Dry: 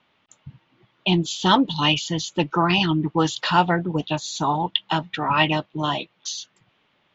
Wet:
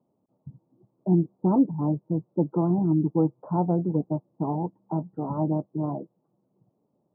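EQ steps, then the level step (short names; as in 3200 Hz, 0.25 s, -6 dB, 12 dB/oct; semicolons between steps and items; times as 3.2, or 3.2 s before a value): Gaussian blur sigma 14 samples; HPF 130 Hz; +1.5 dB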